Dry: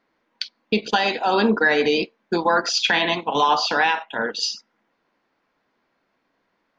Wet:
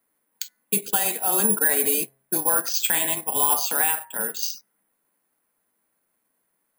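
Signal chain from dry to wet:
frequency shifter −16 Hz
bad sample-rate conversion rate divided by 4×, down none, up zero stuff
hum removal 134.6 Hz, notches 15
level −8.5 dB

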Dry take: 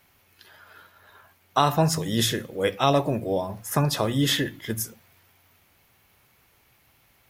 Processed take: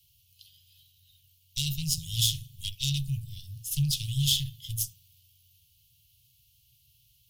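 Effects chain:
harmonic generator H 6 −18 dB, 8 −14 dB, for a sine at −5.5 dBFS
Chebyshev band-stop filter 140–2,900 Hz, order 5

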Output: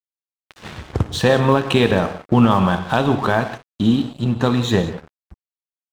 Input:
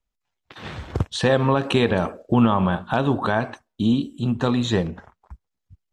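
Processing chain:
0:02.50–0:03.04: high-shelf EQ 3,600 Hz +7.5 dB
reverb whose tail is shaped and stops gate 210 ms flat, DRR 8.5 dB
dead-zone distortion −38.5 dBFS
level +4 dB

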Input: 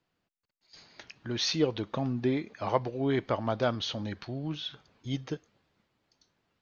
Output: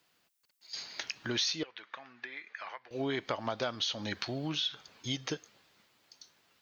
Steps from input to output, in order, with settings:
spectral tilt +3 dB per octave
downward compressor 6 to 1, threshold −37 dBFS, peak gain reduction 15.5 dB
0:01.63–0:02.91: resonant band-pass 1,800 Hz, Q 2.3
level +6.5 dB

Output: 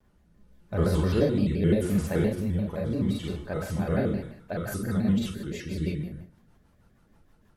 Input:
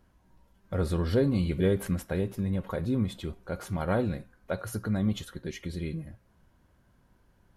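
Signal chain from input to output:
four-comb reverb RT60 0.57 s, combs from 33 ms, DRR −3 dB
rotating-speaker cabinet horn 0.8 Hz, later 6.3 Hz, at 0:04.12
pitch modulation by a square or saw wave square 5.8 Hz, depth 160 cents

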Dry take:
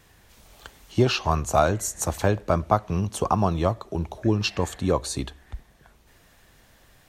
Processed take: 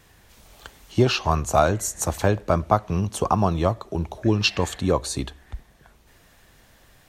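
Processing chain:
0:04.26–0:04.81: parametric band 3,300 Hz +5 dB 1.8 octaves
level +1.5 dB

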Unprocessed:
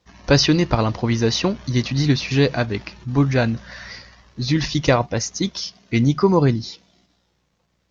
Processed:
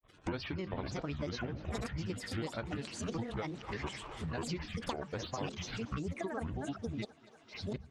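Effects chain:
delay that plays each chunk backwards 648 ms, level −7.5 dB
Gaussian smoothing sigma 1.8 samples
low-shelf EQ 430 Hz −4 dB
hum removal 62.34 Hz, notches 6
granular cloud, grains 20 per second, spray 21 ms, pitch spread up and down by 12 semitones
speech leveller within 4 dB 0.5 s
feedback echo with a high-pass in the loop 242 ms, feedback 75%, high-pass 270 Hz, level −23 dB
downward compressor 6 to 1, threshold −35 dBFS, peak gain reduction 18.5 dB
noise gate −46 dBFS, range −7 dB
level −1.5 dB

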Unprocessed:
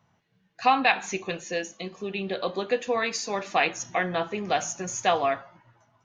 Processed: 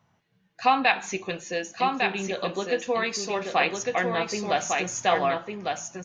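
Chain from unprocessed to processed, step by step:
single-tap delay 1,153 ms −4 dB

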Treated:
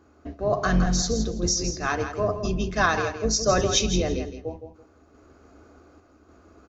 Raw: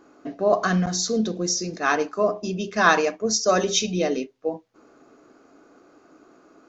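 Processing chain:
sub-octave generator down 2 octaves, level +1 dB
sample-and-hold tremolo
on a send: repeating echo 165 ms, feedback 19%, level −9 dB

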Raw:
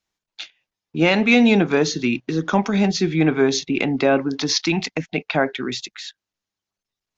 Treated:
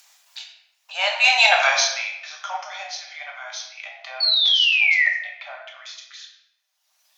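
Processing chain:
source passing by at 0:01.55, 19 m/s, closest 1.9 metres
Butterworth high-pass 610 Hz 96 dB per octave
high-shelf EQ 4,700 Hz +9.5 dB
upward compression, threshold −39 dBFS
sound drawn into the spectrogram fall, 0:04.20–0:05.09, 1,800–4,500 Hz −29 dBFS
rectangular room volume 280 cubic metres, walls mixed, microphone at 1.2 metres
level +8.5 dB

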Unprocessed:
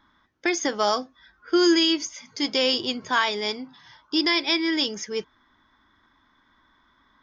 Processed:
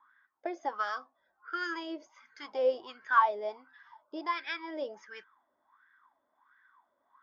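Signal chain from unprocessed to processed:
LFO wah 1.4 Hz 560–1,700 Hz, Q 9
level +6 dB

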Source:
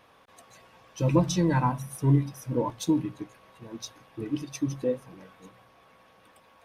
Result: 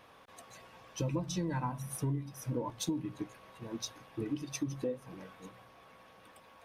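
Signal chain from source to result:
downward compressor 6 to 1, threshold −32 dBFS, peak gain reduction 15 dB

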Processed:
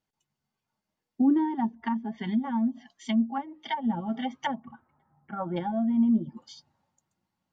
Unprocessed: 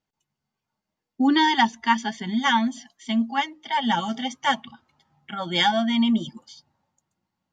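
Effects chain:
0:04.59–0:05.56: low-pass filter 2,100 Hz → 1,200 Hz 24 dB per octave
treble cut that deepens with the level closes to 470 Hz, closed at −20.5 dBFS
level −1.5 dB

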